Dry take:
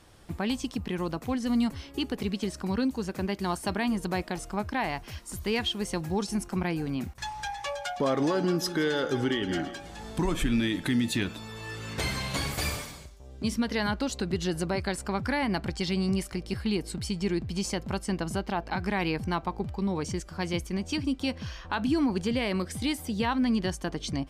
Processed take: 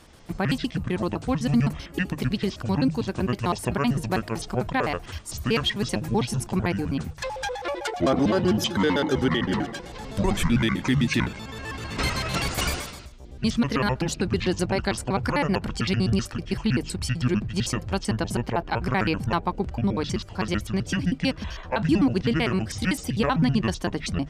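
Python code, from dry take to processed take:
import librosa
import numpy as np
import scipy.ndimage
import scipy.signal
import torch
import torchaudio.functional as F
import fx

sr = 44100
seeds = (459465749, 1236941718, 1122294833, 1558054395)

y = fx.pitch_trill(x, sr, semitones=-8.5, every_ms=64)
y = fx.hum_notches(y, sr, base_hz=50, count=3)
y = y * 10.0 ** (5.5 / 20.0)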